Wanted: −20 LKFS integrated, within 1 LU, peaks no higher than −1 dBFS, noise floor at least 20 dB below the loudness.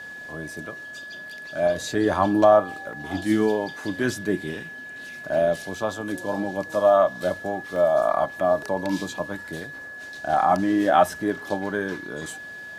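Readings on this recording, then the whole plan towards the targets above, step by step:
number of dropouts 2; longest dropout 1.8 ms; interfering tone 1,700 Hz; level of the tone −36 dBFS; integrated loudness −23.5 LKFS; sample peak −5.0 dBFS; target loudness −20.0 LKFS
→ repair the gap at 0:02.93/0:07.76, 1.8 ms
notch filter 1,700 Hz, Q 30
level +3.5 dB

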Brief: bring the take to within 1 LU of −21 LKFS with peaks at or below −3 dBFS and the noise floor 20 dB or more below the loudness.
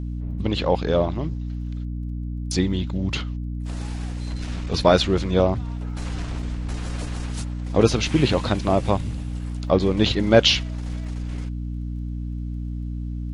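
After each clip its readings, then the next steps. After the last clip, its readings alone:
crackle rate 20 per second; mains hum 60 Hz; hum harmonics up to 300 Hz; level of the hum −26 dBFS; integrated loudness −24.0 LKFS; sample peak −2.0 dBFS; target loudness −21.0 LKFS
→ click removal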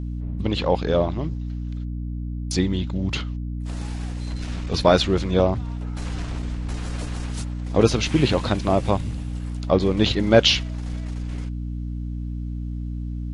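crackle rate 0 per second; mains hum 60 Hz; hum harmonics up to 300 Hz; level of the hum −26 dBFS
→ mains-hum notches 60/120/180/240/300 Hz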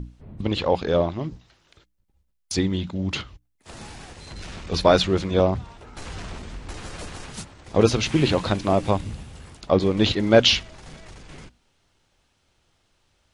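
mains hum none found; integrated loudness −22.0 LKFS; sample peak −3.0 dBFS; target loudness −21.0 LKFS
→ level +1 dB
brickwall limiter −3 dBFS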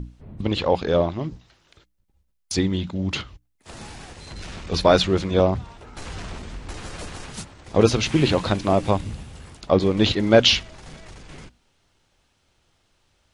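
integrated loudness −21.0 LKFS; sample peak −3.0 dBFS; background noise floor −68 dBFS

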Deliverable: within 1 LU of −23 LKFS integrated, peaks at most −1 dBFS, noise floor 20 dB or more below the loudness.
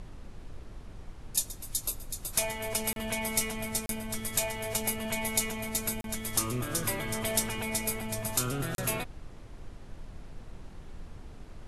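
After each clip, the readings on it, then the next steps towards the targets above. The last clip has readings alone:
number of dropouts 4; longest dropout 32 ms; background noise floor −47 dBFS; target noise floor −51 dBFS; integrated loudness −31.0 LKFS; sample peak −11.0 dBFS; target loudness −23.0 LKFS
→ repair the gap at 0:02.93/0:03.86/0:06.01/0:08.75, 32 ms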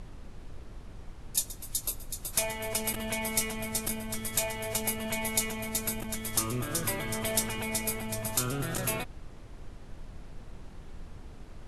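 number of dropouts 0; background noise floor −47 dBFS; target noise floor −51 dBFS
→ noise reduction from a noise print 6 dB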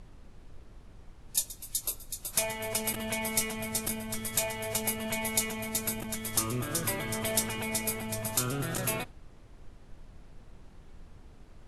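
background noise floor −53 dBFS; integrated loudness −31.0 LKFS; sample peak −11.0 dBFS; target loudness −23.0 LKFS
→ level +8 dB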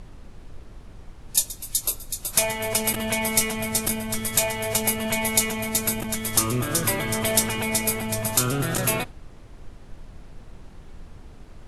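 integrated loudness −23.0 LKFS; sample peak −3.0 dBFS; background noise floor −45 dBFS

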